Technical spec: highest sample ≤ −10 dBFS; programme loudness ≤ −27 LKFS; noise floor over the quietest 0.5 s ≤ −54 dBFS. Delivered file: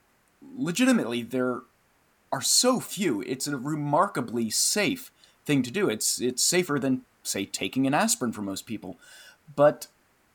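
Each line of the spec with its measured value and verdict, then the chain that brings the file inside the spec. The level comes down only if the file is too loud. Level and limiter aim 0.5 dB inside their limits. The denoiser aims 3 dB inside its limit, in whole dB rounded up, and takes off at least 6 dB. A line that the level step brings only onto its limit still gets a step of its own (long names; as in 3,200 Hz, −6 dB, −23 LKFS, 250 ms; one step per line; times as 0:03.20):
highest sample −8.0 dBFS: out of spec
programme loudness −25.5 LKFS: out of spec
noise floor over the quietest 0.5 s −65 dBFS: in spec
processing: level −2 dB
brickwall limiter −10.5 dBFS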